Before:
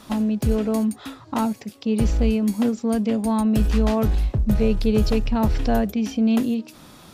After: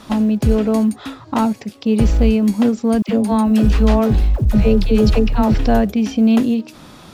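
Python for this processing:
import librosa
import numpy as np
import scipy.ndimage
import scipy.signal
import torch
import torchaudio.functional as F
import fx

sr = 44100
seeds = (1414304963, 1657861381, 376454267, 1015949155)

y = fx.high_shelf(x, sr, hz=9200.0, db=-10.5)
y = fx.quant_float(y, sr, bits=6)
y = fx.dispersion(y, sr, late='lows', ms=73.0, hz=620.0, at=(3.02, 5.54))
y = y * 10.0 ** (6.0 / 20.0)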